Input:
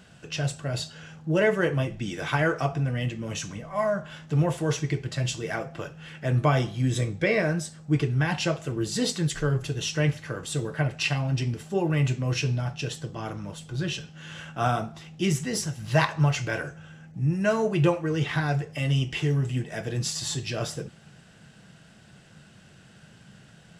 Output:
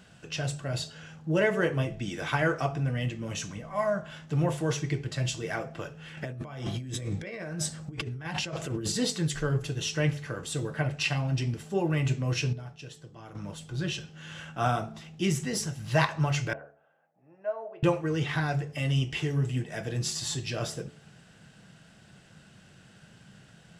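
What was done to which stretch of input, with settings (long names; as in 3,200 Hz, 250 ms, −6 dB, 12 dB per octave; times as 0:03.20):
0:06.17–0:08.92: compressor whose output falls as the input rises −33 dBFS
0:12.53–0:13.35: clip gain −10.5 dB
0:16.53–0:17.83: four-pole ladder band-pass 730 Hz, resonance 55%
whole clip: hum removal 72.73 Hz, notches 9; level −2 dB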